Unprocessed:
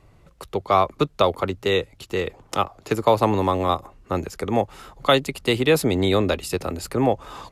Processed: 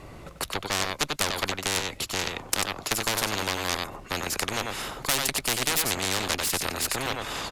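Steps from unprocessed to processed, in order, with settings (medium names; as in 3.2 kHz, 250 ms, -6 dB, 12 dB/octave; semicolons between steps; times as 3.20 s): echo from a far wall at 16 m, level -9 dB; Chebyshev shaper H 4 -12 dB, 5 -9 dB, 7 -15 dB, 8 -18 dB, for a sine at -3.5 dBFS; spectrum-flattening compressor 4:1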